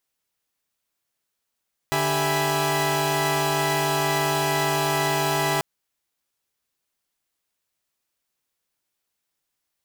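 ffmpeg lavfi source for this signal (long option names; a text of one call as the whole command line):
ffmpeg -f lavfi -i "aevalsrc='0.0562*((2*mod(146.83*t,1)-1)+(2*mod(392*t,1)-1)+(2*mod(659.26*t,1)-1)+(2*mod(830.61*t,1)-1)+(2*mod(987.77*t,1)-1))':duration=3.69:sample_rate=44100" out.wav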